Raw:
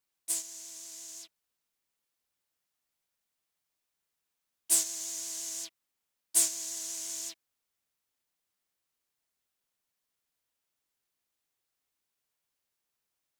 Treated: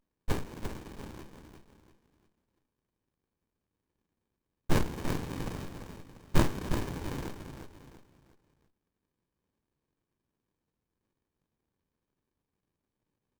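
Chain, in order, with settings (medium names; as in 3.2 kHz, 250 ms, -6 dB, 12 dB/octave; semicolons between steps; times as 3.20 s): feedback delay 345 ms, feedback 36%, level -7 dB; sliding maximum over 65 samples; trim +6 dB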